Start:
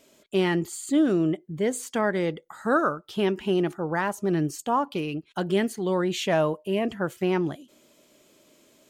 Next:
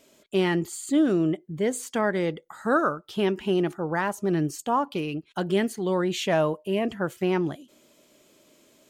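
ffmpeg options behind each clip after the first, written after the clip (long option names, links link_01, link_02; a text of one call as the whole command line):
ffmpeg -i in.wav -af anull out.wav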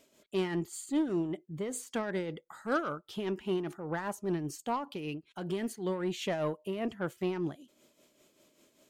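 ffmpeg -i in.wav -af "aeval=exprs='0.237*(cos(1*acos(clip(val(0)/0.237,-1,1)))-cos(1*PI/2))+0.0188*(cos(5*acos(clip(val(0)/0.237,-1,1)))-cos(5*PI/2))':channel_layout=same,tremolo=f=5.1:d=0.56,volume=-7.5dB" out.wav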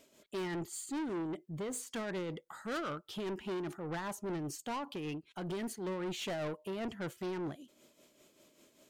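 ffmpeg -i in.wav -af "asoftclip=type=tanh:threshold=-35.5dB,volume=1dB" out.wav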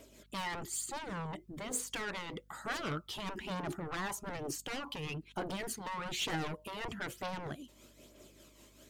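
ffmpeg -i in.wav -af "aeval=exprs='val(0)+0.000224*(sin(2*PI*50*n/s)+sin(2*PI*2*50*n/s)/2+sin(2*PI*3*50*n/s)/3+sin(2*PI*4*50*n/s)/4+sin(2*PI*5*50*n/s)/5)':channel_layout=same,afftfilt=real='re*lt(hypot(re,im),0.0631)':imag='im*lt(hypot(re,im),0.0631)':win_size=1024:overlap=0.75,aphaser=in_gain=1:out_gain=1:delay=1.1:decay=0.4:speed=1.1:type=triangular,volume=4.5dB" out.wav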